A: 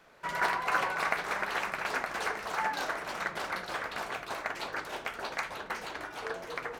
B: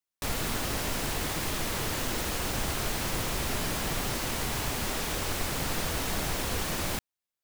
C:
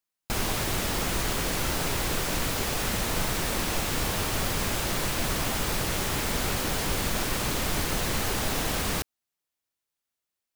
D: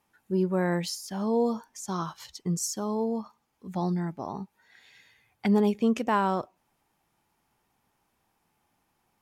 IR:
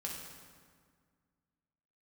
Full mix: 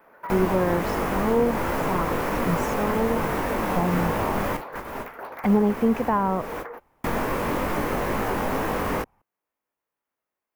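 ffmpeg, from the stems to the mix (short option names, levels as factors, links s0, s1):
-filter_complex "[0:a]acompressor=threshold=0.0141:ratio=6,aeval=exprs='0.0237*(abs(mod(val(0)/0.0237+3,4)-2)-1)':c=same,aexciter=amount=3.7:drive=9:freq=11000,volume=0.562[s0];[1:a]adelay=1450,volume=0.422[s1];[2:a]flanger=delay=18.5:depth=3.1:speed=2.2,volume=1.12,asplit=3[s2][s3][s4];[s2]atrim=end=4.57,asetpts=PTS-STARTPTS,afade=t=out:st=4.566:d=0.004:c=hsin[s5];[s3]atrim=start=4.57:end=7.04,asetpts=PTS-STARTPTS,volume=0[s6];[s4]atrim=start=7.04,asetpts=PTS-STARTPTS,afade=t=in:d=0.004:c=hsin[s7];[s5][s6][s7]concat=n=3:v=0:a=1[s8];[3:a]asubboost=boost=10:cutoff=87,volume=0.794,asplit=2[s9][s10];[s10]apad=whole_len=391710[s11];[s1][s11]sidechaingate=range=0.0178:threshold=0.00126:ratio=16:detection=peak[s12];[s0][s12][s8][s9]amix=inputs=4:normalize=0,equalizer=f=250:t=o:w=1:g=7,equalizer=f=500:t=o:w=1:g=9,equalizer=f=1000:t=o:w=1:g=10,equalizer=f=2000:t=o:w=1:g=5,equalizer=f=4000:t=o:w=1:g=-8,equalizer=f=8000:t=o:w=1:g=-7,acrossover=split=320[s13][s14];[s14]acompressor=threshold=0.0501:ratio=2[s15];[s13][s15]amix=inputs=2:normalize=0"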